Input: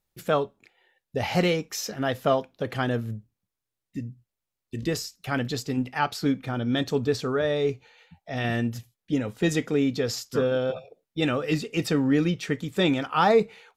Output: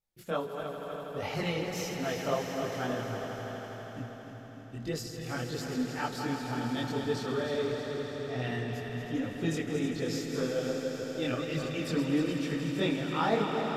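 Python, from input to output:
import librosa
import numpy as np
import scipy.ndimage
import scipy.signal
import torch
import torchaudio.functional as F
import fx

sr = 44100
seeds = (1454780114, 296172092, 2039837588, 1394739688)

p1 = fx.reverse_delay_fb(x, sr, ms=153, feedback_pct=77, wet_db=-8)
p2 = fx.chorus_voices(p1, sr, voices=2, hz=1.5, base_ms=22, depth_ms=3.0, mix_pct=55)
p3 = p2 + fx.echo_swell(p2, sr, ms=81, loudest=5, wet_db=-12.5, dry=0)
y = p3 * 10.0 ** (-6.0 / 20.0)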